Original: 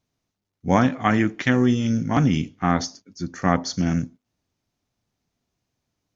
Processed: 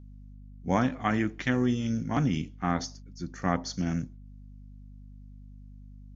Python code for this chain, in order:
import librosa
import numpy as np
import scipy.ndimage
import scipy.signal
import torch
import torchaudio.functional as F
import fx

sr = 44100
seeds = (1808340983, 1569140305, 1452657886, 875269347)

y = fx.add_hum(x, sr, base_hz=50, snr_db=16)
y = F.gain(torch.from_numpy(y), -7.5).numpy()